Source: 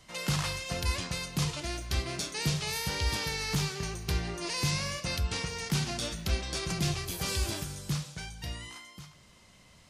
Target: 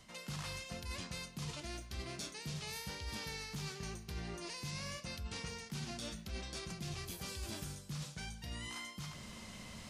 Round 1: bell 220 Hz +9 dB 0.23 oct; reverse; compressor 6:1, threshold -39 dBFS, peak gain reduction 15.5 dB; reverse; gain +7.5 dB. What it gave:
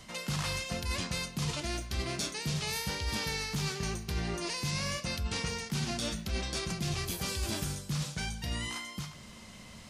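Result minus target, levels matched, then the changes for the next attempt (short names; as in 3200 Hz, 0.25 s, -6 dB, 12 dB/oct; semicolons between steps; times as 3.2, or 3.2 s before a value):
compressor: peak gain reduction -9.5 dB
change: compressor 6:1, threshold -50.5 dBFS, peak gain reduction 25 dB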